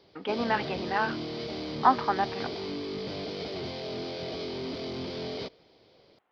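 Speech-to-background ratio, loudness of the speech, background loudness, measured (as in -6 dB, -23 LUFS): 7.0 dB, -29.0 LUFS, -36.0 LUFS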